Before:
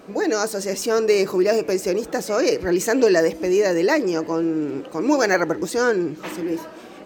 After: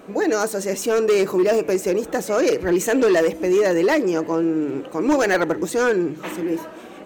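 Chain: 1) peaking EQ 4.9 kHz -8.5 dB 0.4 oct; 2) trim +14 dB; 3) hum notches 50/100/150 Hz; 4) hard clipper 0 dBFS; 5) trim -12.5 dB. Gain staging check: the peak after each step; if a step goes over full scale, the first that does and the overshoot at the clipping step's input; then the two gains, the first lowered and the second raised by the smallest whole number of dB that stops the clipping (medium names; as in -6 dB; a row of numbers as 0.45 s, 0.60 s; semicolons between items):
-5.5 dBFS, +8.5 dBFS, +8.5 dBFS, 0.0 dBFS, -12.5 dBFS; step 2, 8.5 dB; step 2 +5 dB, step 5 -3.5 dB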